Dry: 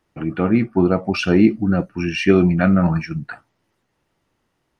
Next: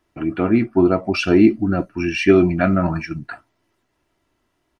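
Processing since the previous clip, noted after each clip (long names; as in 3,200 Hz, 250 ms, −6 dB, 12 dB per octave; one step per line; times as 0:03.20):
comb filter 3 ms, depth 45%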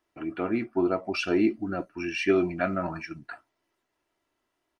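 bass and treble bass −10 dB, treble 0 dB
level −7.5 dB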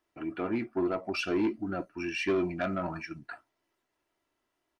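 soft clipping −20 dBFS, distortion −14 dB
level −2 dB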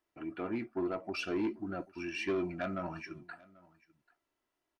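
single-tap delay 788 ms −23.5 dB
level −5 dB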